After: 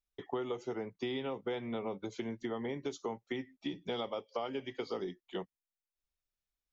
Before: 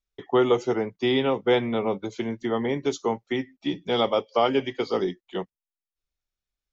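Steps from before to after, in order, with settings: compression, threshold -29 dBFS, peak gain reduction 13 dB; trim -5.5 dB

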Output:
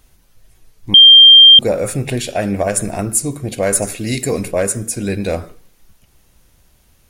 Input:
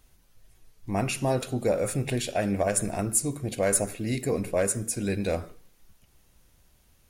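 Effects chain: 0.94–1.59 s: bleep 3.18 kHz -9 dBFS; 3.82–4.48 s: peaking EQ 6.7 kHz +8 dB 2.6 oct; trim +8 dB

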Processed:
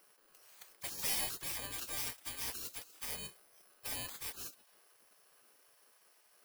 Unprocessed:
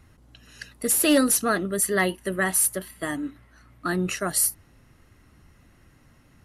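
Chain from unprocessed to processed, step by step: bit-reversed sample order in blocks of 32 samples; de-hum 425.7 Hz, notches 12; saturation -21 dBFS, distortion -11 dB; spectral gate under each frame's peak -20 dB weak; trim -2.5 dB

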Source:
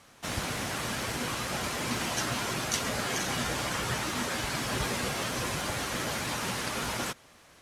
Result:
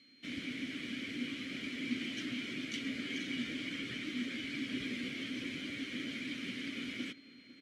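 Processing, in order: whistle 4.2 kHz -49 dBFS; vowel filter i; echo from a far wall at 86 m, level -16 dB; trim +5 dB

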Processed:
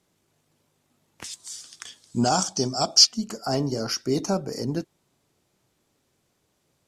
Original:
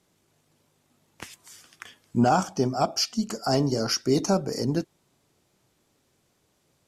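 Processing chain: 1.24–3.07 s: high-order bell 5.7 kHz +13.5 dB; trim -2 dB

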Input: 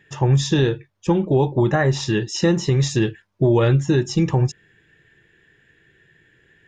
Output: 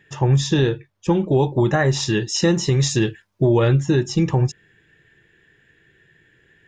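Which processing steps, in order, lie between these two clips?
1.12–3.45 s: treble shelf 4.5 kHz +7 dB

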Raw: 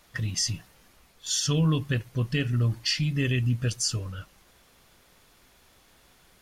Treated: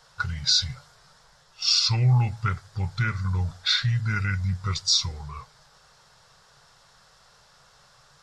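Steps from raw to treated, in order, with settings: FFT filter 110 Hz 0 dB, 180 Hz +9 dB, 380 Hz -14 dB, 600 Hz +4 dB, 1.9 kHz +10 dB, 3.2 kHz -3 dB, 4.7 kHz +7 dB, 6.9 kHz +12 dB, 13 kHz -4 dB; tape speed -22%; trim -3 dB

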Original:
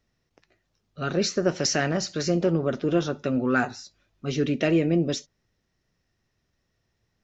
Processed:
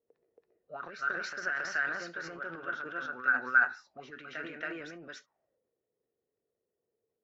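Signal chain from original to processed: reverse echo 276 ms -3.5 dB; auto-wah 450–1500 Hz, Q 8.2, up, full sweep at -25 dBFS; transient shaper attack +2 dB, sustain +8 dB; trim +3.5 dB

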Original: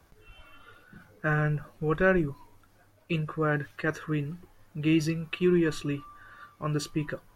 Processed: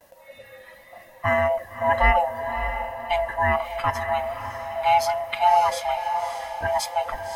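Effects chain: split-band scrambler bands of 500 Hz; gate with hold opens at -57 dBFS; treble shelf 9.7 kHz +10.5 dB; echo that smears into a reverb 587 ms, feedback 46%, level -8 dB; trim +5 dB

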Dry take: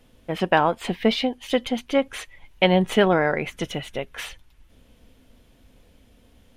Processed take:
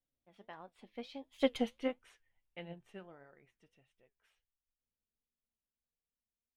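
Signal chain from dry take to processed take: Doppler pass-by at 1.58 s, 24 m/s, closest 3.1 m; flange 1.5 Hz, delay 5.1 ms, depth 5.9 ms, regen +72%; upward expansion 1.5:1, over -46 dBFS; trim -1 dB

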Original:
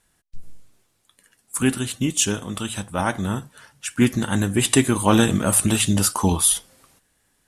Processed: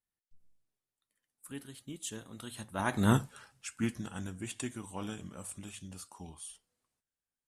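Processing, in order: Doppler pass-by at 3.16 s, 23 m/s, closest 2 m; trim +2 dB

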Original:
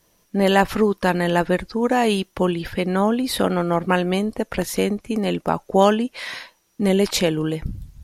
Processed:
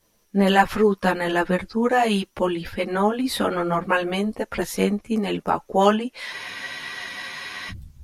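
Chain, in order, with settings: dynamic bell 1.4 kHz, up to +4 dB, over -32 dBFS, Q 0.73; spectral freeze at 6.35 s, 1.34 s; three-phase chorus

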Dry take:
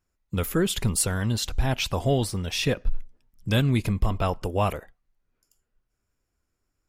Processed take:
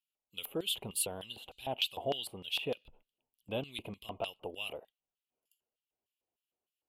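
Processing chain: FFT filter 460 Hz 0 dB, 1.8 kHz -16 dB, 2.9 kHz +10 dB, 5.5 kHz -20 dB, 12 kHz +13 dB; LFO band-pass square 3.3 Hz 790–4600 Hz; trim +1.5 dB

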